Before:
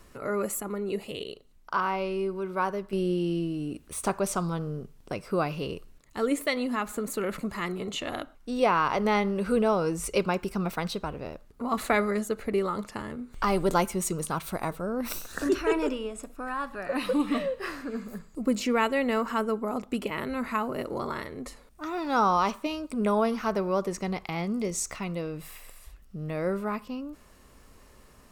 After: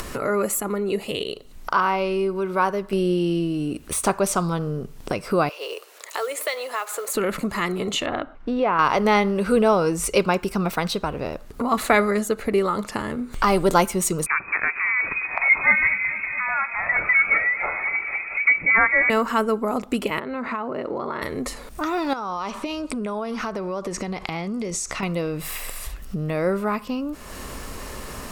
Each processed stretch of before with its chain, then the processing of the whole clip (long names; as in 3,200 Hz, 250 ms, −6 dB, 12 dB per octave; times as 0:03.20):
0:05.49–0:07.15: downward compressor 1.5 to 1, threshold −42 dBFS + Butterworth high-pass 440 Hz + noise that follows the level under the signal 23 dB
0:08.06–0:08.79: low-pass filter 2,200 Hz + downward compressor 2.5 to 1, threshold −25 dBFS
0:14.26–0:19.10: voice inversion scrambler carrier 2,500 Hz + feedback echo with a swinging delay time 224 ms, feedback 68%, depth 96 cents, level −15 dB
0:20.19–0:21.22: downward compressor 4 to 1, threshold −31 dBFS + high-pass filter 290 Hz 6 dB per octave + head-to-tape spacing loss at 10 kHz 28 dB
0:22.13–0:25.03: low-pass filter 9,600 Hz + downward compressor 5 to 1, threshold −37 dBFS
whole clip: low-shelf EQ 330 Hz −3 dB; upward compression, threshold −28 dBFS; level +7.5 dB